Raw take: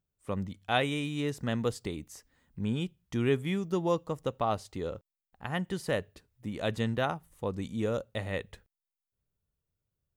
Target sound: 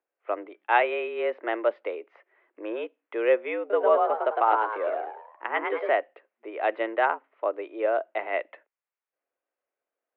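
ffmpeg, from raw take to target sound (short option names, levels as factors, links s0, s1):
-filter_complex "[0:a]asettb=1/sr,asplit=3[s0][s1][s2];[s0]atrim=end=3.594[s3];[s1]atrim=start=3.59:end=5.92,asetpts=PTS-STARTPTS,afade=t=in:d=0.004:c=qsin,afade=t=out:st=2.326:d=0.004:c=qsin,asplit=6[s4][s5][s6][s7][s8][s9];[s5]adelay=106,afreqshift=100,volume=0.631[s10];[s6]adelay=212,afreqshift=200,volume=0.26[s11];[s7]adelay=318,afreqshift=300,volume=0.106[s12];[s8]adelay=424,afreqshift=400,volume=0.0437[s13];[s9]adelay=530,afreqshift=500,volume=0.0178[s14];[s4][s10][s11][s12][s13][s14]amix=inputs=6:normalize=0,atrim=end_sample=102753[s15];[s2]atrim=start=5.916[s16];[s3][s15]acrossfade=d=0.004:c1=hsin:c2=qsin[s17];[s17][s16]acrossfade=d=0.004:c1=qsin:c2=hsin,highpass=f=300:t=q:w=0.5412,highpass=f=300:t=q:w=1.307,lowpass=f=2400:t=q:w=0.5176,lowpass=f=2400:t=q:w=0.7071,lowpass=f=2400:t=q:w=1.932,afreqshift=110,volume=2.37"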